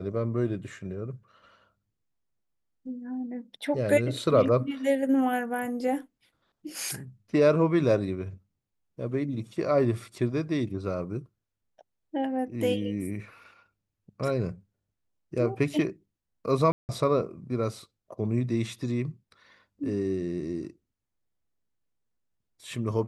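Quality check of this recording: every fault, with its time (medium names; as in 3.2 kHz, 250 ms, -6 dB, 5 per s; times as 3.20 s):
16.72–16.89 s: dropout 169 ms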